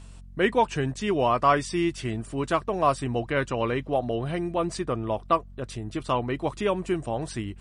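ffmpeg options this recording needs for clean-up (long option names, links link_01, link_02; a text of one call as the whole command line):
ffmpeg -i in.wav -af "bandreject=frequency=46:width_type=h:width=4,bandreject=frequency=92:width_type=h:width=4,bandreject=frequency=138:width_type=h:width=4,bandreject=frequency=184:width_type=h:width=4,bandreject=frequency=230:width_type=h:width=4" out.wav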